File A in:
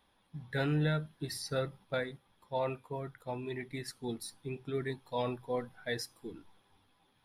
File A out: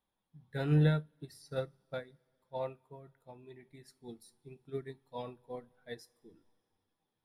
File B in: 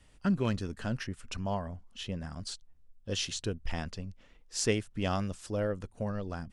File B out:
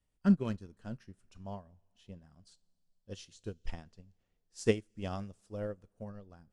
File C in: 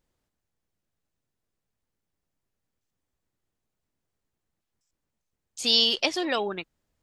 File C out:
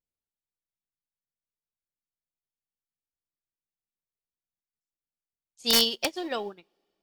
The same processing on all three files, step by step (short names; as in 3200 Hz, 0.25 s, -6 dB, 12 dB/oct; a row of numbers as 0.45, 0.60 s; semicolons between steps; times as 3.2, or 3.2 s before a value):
bell 2300 Hz -5 dB 2.3 oct; wrapped overs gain 12.5 dB; two-slope reverb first 0.21 s, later 3.1 s, from -21 dB, DRR 14.5 dB; upward expander 2.5:1, over -39 dBFS; gain +4 dB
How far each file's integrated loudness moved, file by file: +1.0, -2.0, -1.5 LU